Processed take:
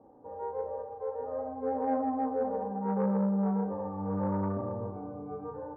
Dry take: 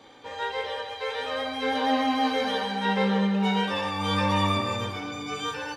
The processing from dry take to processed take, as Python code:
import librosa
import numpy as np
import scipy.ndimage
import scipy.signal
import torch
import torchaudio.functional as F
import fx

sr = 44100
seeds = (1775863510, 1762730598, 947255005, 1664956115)

p1 = scipy.signal.sosfilt(scipy.signal.cheby2(4, 60, 2800.0, 'lowpass', fs=sr, output='sos'), x)
p2 = p1 + fx.room_flutter(p1, sr, wall_m=6.2, rt60_s=0.23, dry=0)
p3 = fx.transformer_sat(p2, sr, knee_hz=420.0)
y = p3 * 10.0 ** (-3.5 / 20.0)